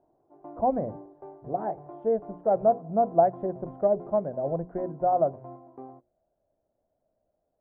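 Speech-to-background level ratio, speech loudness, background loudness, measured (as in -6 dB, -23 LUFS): 19.0 dB, -27.5 LUFS, -46.5 LUFS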